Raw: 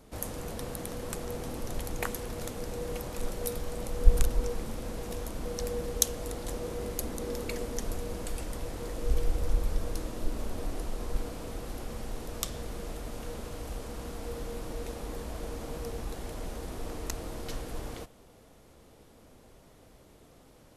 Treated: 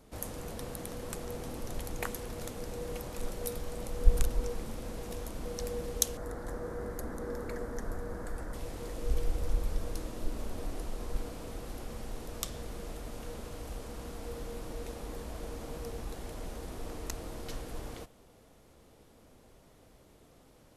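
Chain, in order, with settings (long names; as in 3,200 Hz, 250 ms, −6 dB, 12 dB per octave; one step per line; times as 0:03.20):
0:06.17–0:08.54: high shelf with overshoot 2,100 Hz −8 dB, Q 3
level −3 dB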